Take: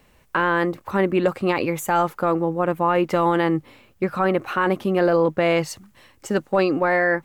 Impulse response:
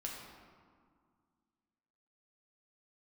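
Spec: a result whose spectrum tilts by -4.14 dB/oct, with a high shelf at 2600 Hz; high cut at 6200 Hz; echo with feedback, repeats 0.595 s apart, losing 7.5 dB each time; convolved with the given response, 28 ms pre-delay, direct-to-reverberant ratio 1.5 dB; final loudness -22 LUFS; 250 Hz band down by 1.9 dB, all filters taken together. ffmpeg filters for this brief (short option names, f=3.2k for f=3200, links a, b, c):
-filter_complex "[0:a]lowpass=6.2k,equalizer=f=250:t=o:g=-3.5,highshelf=f=2.6k:g=4,aecho=1:1:595|1190|1785|2380|2975:0.422|0.177|0.0744|0.0312|0.0131,asplit=2[a][b];[1:a]atrim=start_sample=2205,adelay=28[c];[b][c]afir=irnorm=-1:irlink=0,volume=-1dB[d];[a][d]amix=inputs=2:normalize=0,volume=-3dB"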